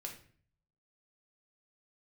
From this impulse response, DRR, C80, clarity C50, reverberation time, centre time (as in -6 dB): 1.0 dB, 12.5 dB, 8.0 dB, 0.50 s, 19 ms